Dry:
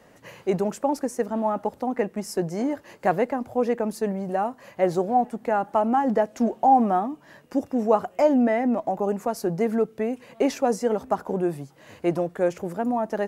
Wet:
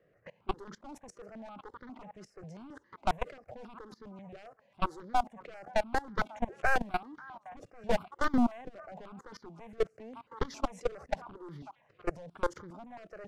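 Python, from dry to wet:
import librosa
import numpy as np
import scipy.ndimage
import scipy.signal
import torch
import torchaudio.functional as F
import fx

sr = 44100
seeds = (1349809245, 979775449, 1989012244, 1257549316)

p1 = np.minimum(x, 2.0 * 10.0 ** (-21.0 / 20.0) - x)
p2 = fx.env_lowpass(p1, sr, base_hz=1800.0, full_db=-18.0)
p3 = p2 + fx.echo_stepped(p2, sr, ms=552, hz=1100.0, octaves=1.4, feedback_pct=70, wet_db=-11.5, dry=0)
p4 = fx.level_steps(p3, sr, step_db=22)
y = fx.phaser_held(p4, sr, hz=7.4, low_hz=240.0, high_hz=2600.0)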